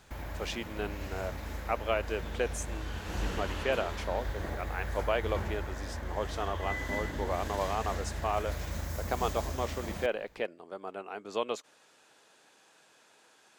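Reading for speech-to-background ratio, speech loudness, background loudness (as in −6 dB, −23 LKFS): 2.5 dB, −36.0 LKFS, −38.5 LKFS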